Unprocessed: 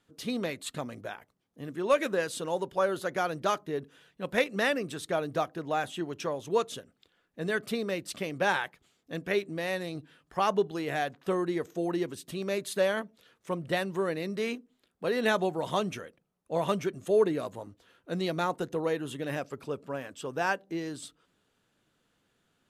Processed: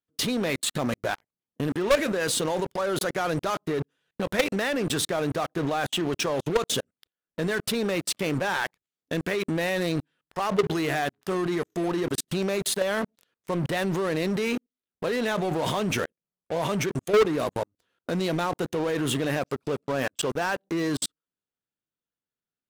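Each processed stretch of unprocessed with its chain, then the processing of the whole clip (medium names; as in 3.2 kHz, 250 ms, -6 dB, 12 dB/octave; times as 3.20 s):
10.61–11.84 s: treble shelf 9.3 kHz +2.5 dB + band-stop 520 Hz, Q 5.6 + de-hum 104 Hz, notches 5
whole clip: level held to a coarse grid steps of 22 dB; waveshaping leveller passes 5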